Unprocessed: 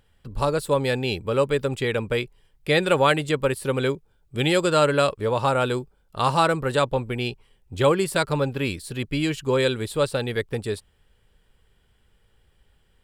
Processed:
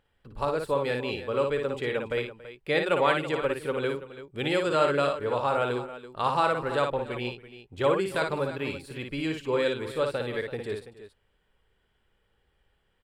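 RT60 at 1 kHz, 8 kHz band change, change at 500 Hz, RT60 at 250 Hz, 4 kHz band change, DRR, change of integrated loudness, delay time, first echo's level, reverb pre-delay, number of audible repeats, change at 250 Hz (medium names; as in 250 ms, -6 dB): no reverb, -13.0 dB, -4.0 dB, no reverb, -7.0 dB, no reverb, -5.0 dB, 57 ms, -5.0 dB, no reverb, 3, -6.5 dB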